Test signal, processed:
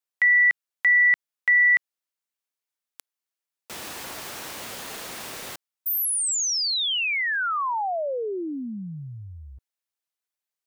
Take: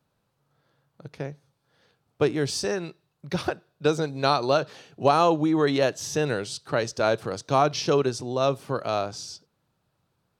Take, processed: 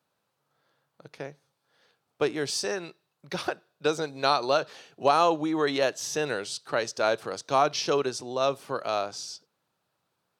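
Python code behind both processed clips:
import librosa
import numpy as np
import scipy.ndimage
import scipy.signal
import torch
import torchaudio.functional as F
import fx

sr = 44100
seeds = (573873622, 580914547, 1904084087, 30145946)

y = fx.highpass(x, sr, hz=490.0, slope=6)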